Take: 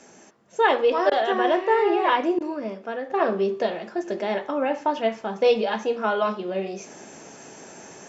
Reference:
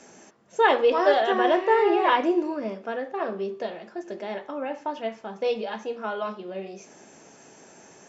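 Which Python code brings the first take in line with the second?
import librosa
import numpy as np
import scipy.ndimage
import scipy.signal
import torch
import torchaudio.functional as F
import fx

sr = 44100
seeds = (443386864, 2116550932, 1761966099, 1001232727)

y = fx.fix_interpolate(x, sr, at_s=(1.1, 2.39), length_ms=14.0)
y = fx.gain(y, sr, db=fx.steps((0.0, 0.0), (3.1, -7.0)))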